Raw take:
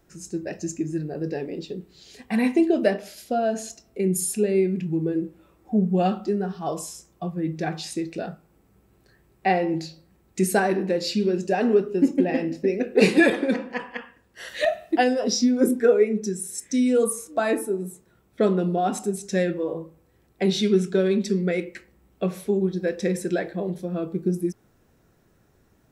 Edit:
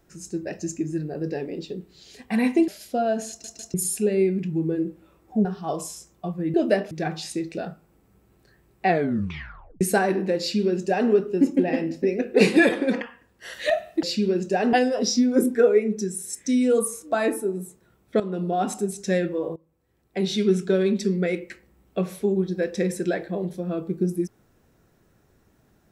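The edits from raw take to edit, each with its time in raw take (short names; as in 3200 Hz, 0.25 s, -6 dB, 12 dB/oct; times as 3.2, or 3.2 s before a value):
2.68–3.05 move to 7.52
3.66 stutter in place 0.15 s, 3 plays
5.82–6.43 cut
9.47 tape stop 0.95 s
11.01–11.71 copy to 14.98
13.62–13.96 cut
18.45–18.98 fade in equal-power, from -14 dB
19.81–20.81 fade in, from -20.5 dB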